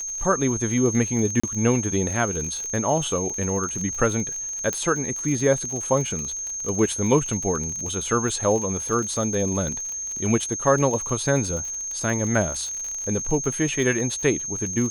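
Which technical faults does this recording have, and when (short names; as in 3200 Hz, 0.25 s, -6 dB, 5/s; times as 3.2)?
crackle 42/s -28 dBFS
tone 6400 Hz -28 dBFS
1.4–1.44 gap 35 ms
4.73 pop -11 dBFS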